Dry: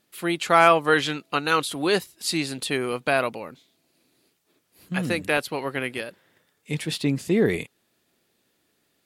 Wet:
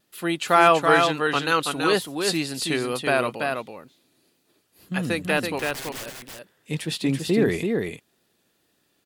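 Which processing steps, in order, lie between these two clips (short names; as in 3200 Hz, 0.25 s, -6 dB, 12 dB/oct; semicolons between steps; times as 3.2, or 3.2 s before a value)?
notch 2200 Hz, Q 15; 5.59–6.06 wrapped overs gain 30.5 dB; on a send: echo 0.331 s -4.5 dB; on the sum: vibrato 2.1 Hz 36 cents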